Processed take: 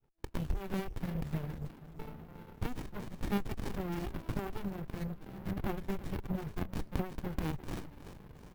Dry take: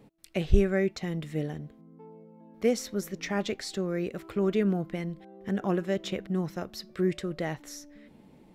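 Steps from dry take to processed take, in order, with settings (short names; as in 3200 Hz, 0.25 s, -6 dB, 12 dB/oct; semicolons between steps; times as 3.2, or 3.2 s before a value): opening faded in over 0.72 s; low shelf 250 Hz -3 dB; compressor 3:1, threshold -42 dBFS, peak gain reduction 18 dB; graphic EQ 125/250/1000/8000 Hz +5/-12/+8/+4 dB; careless resampling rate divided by 3×, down none, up zero stuff; on a send: feedback echo 0.348 s, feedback 39%, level -10.5 dB; on the sum: reverb removal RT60 0.62 s; harmonic-percussive split harmonic +4 dB; envelope flanger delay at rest 2.4 ms, full sweep at -31 dBFS; running maximum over 65 samples; gain +5.5 dB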